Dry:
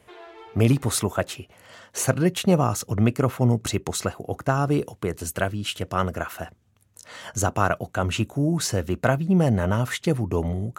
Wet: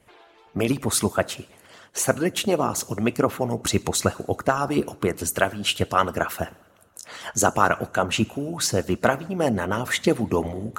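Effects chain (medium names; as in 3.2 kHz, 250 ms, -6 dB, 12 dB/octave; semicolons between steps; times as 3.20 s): two-slope reverb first 0.67 s, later 2.8 s, from -18 dB, DRR 11 dB; harmonic-percussive split harmonic -17 dB; gain riding within 4 dB 2 s; trim +4.5 dB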